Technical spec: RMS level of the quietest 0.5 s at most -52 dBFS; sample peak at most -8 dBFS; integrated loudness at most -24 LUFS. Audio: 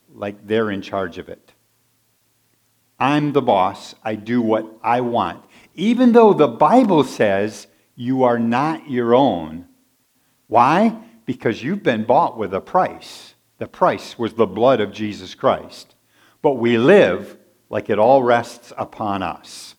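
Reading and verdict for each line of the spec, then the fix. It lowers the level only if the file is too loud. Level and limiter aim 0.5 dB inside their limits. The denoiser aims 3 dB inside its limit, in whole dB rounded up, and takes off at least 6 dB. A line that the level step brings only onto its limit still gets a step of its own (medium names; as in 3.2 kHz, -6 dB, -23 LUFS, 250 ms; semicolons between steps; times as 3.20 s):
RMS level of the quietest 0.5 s -63 dBFS: pass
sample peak -1.5 dBFS: fail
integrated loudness -17.5 LUFS: fail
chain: trim -7 dB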